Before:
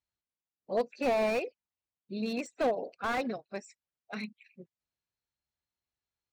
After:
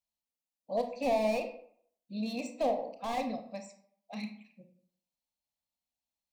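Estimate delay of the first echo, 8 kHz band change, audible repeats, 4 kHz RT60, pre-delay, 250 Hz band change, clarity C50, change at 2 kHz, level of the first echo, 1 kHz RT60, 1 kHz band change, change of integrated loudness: no echo audible, 0.0 dB, no echo audible, 0.35 s, 26 ms, −0.5 dB, 9.0 dB, −6.5 dB, no echo audible, 0.60 s, 0.0 dB, −1.0 dB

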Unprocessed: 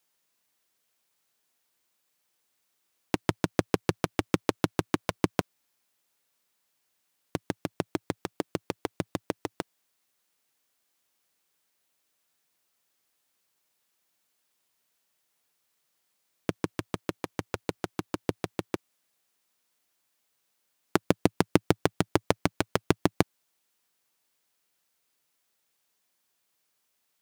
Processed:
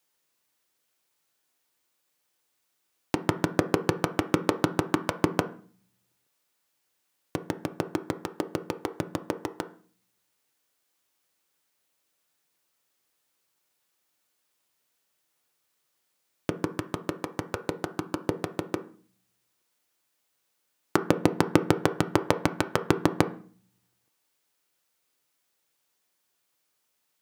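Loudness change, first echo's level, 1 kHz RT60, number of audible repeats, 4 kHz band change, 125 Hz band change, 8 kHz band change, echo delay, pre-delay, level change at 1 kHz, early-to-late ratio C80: +2.0 dB, no echo audible, 0.45 s, no echo audible, 0.0 dB, +1.0 dB, 0.0 dB, no echo audible, 3 ms, +3.0 dB, 20.0 dB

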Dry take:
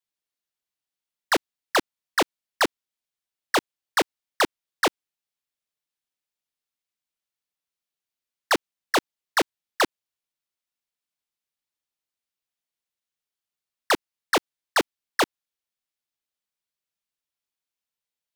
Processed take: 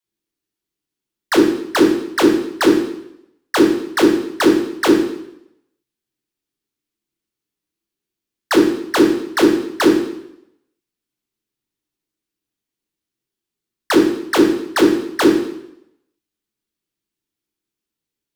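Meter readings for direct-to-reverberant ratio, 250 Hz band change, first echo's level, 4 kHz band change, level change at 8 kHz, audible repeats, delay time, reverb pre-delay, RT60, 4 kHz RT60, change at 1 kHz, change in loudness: −1.5 dB, +20.0 dB, no echo audible, +4.0 dB, +4.0 dB, no echo audible, no echo audible, 8 ms, 0.80 s, 0.75 s, +3.5 dB, +10.0 dB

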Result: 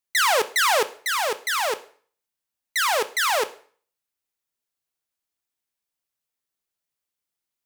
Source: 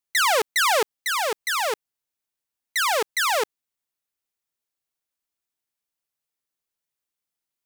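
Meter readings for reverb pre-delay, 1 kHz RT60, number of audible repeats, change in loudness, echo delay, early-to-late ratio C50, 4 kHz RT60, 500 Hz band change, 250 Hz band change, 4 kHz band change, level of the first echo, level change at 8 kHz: 5 ms, 0.50 s, no echo audible, +0.5 dB, no echo audible, 17.0 dB, 0.45 s, 0.0 dB, +0.5 dB, +0.5 dB, no echo audible, +0.5 dB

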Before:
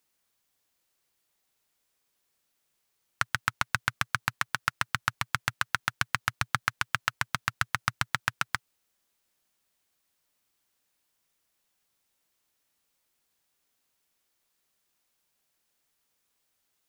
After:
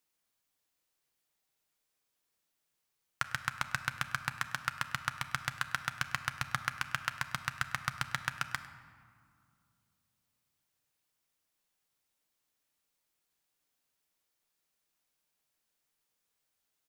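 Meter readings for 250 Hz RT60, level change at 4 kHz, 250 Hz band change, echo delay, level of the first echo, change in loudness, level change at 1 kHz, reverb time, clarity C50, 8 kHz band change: 3.3 s, −5.5 dB, −5.0 dB, 101 ms, −19.5 dB, −5.5 dB, −5.5 dB, 2.2 s, 11.5 dB, −5.5 dB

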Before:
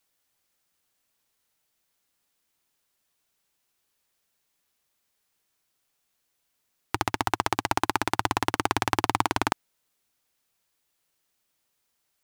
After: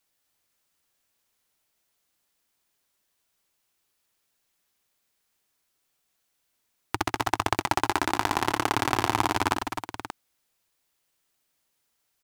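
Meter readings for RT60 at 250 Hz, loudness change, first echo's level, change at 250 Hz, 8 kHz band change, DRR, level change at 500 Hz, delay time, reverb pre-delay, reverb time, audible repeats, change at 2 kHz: no reverb audible, +0.5 dB, −7.5 dB, +1.0 dB, +0.5 dB, no reverb audible, +1.0 dB, 63 ms, no reverb audible, no reverb audible, 4, +0.5 dB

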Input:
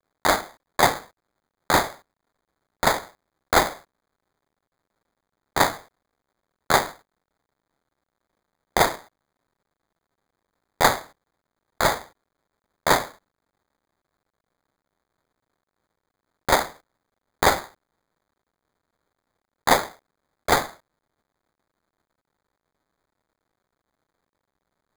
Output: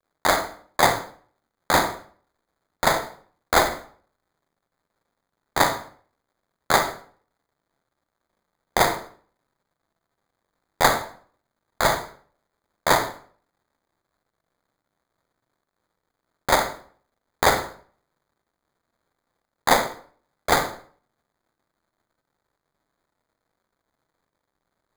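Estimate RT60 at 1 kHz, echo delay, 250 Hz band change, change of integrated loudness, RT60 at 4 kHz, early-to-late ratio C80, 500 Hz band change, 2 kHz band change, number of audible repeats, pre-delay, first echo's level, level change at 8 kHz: 0.50 s, no echo audible, 0.0 dB, 0.0 dB, 0.40 s, 15.0 dB, +0.5 dB, +0.5 dB, no echo audible, 37 ms, no echo audible, +0.5 dB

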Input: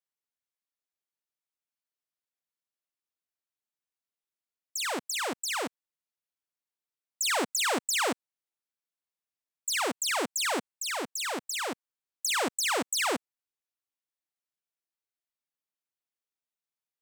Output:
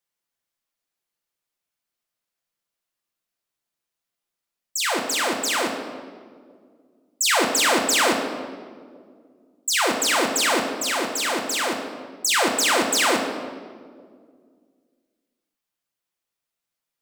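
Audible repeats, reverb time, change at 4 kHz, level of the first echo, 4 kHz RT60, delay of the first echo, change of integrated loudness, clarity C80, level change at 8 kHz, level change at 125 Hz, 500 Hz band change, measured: no echo audible, 2.0 s, +8.5 dB, no echo audible, 1.2 s, no echo audible, +8.5 dB, 7.0 dB, +8.0 dB, +10.5 dB, +9.5 dB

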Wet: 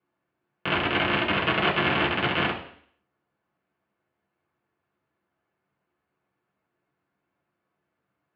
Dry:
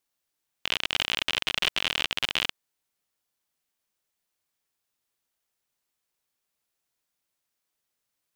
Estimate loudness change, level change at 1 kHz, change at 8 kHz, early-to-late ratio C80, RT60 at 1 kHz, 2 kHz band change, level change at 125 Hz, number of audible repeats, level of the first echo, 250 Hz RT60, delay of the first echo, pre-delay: +2.5 dB, +11.0 dB, below −25 dB, 12.0 dB, 0.60 s, +5.0 dB, +16.0 dB, no echo audible, no echo audible, 0.60 s, no echo audible, 3 ms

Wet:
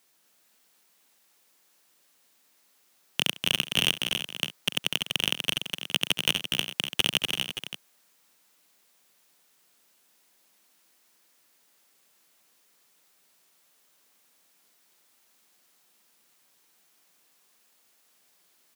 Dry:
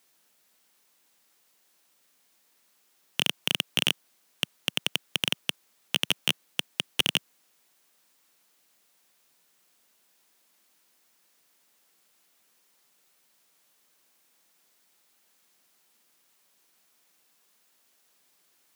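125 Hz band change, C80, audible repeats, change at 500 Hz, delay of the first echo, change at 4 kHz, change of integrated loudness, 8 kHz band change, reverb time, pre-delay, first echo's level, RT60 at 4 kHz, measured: +2.0 dB, no reverb audible, 6, +2.0 dB, 68 ms, +2.0 dB, +1.0 dB, +2.0 dB, no reverb audible, no reverb audible, −19.0 dB, no reverb audible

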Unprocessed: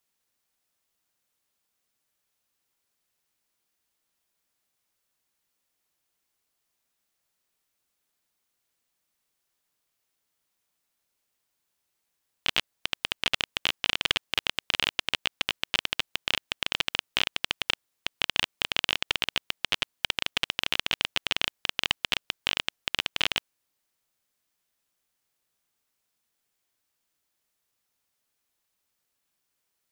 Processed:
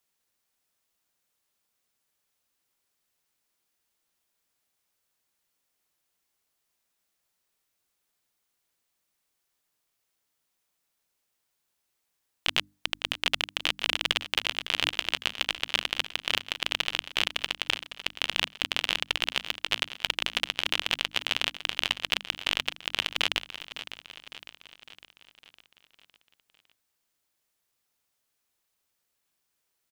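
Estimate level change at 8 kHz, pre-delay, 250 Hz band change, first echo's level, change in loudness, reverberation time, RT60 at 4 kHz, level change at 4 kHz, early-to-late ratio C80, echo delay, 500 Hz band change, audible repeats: +0.5 dB, no reverb audible, −0.5 dB, −13.0 dB, 0.0 dB, no reverb audible, no reverb audible, +0.5 dB, no reverb audible, 556 ms, +0.5 dB, 5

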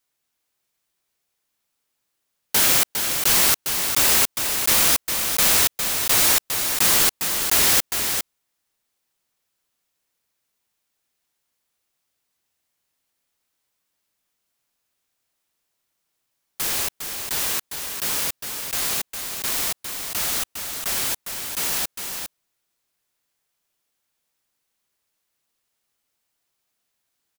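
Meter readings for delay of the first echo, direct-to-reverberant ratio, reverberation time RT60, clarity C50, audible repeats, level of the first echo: 406 ms, no reverb audible, no reverb audible, no reverb audible, 1, −6.5 dB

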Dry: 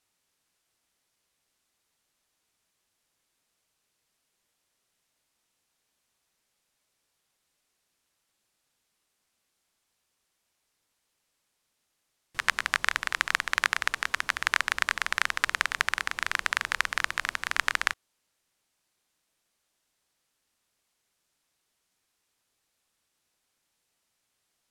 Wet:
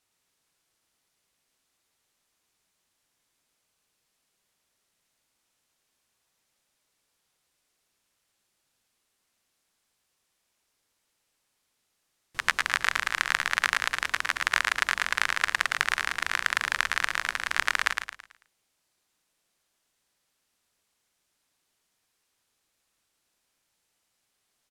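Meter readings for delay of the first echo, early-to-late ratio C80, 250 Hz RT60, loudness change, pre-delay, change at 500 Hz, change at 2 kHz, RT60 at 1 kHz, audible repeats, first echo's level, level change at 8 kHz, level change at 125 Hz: 110 ms, no reverb audible, no reverb audible, +1.5 dB, no reverb audible, +1.5 dB, +1.5 dB, no reverb audible, 4, −5.0 dB, +1.5 dB, +1.0 dB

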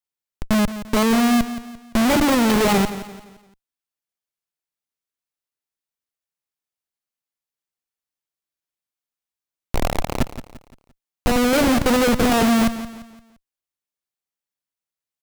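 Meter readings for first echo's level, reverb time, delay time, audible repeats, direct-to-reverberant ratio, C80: −13.0 dB, no reverb audible, 172 ms, 3, no reverb audible, no reverb audible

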